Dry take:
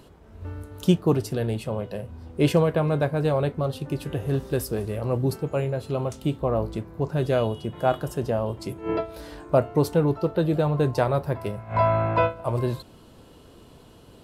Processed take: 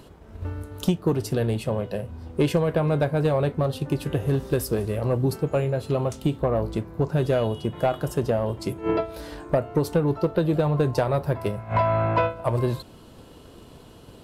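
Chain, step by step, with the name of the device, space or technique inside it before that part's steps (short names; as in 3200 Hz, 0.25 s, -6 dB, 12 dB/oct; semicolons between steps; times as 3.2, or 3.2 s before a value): drum-bus smash (transient shaper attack +4 dB, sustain 0 dB; compressor, threshold -18 dBFS, peak gain reduction 9 dB; soft clip -14 dBFS, distortion -19 dB); gain +2.5 dB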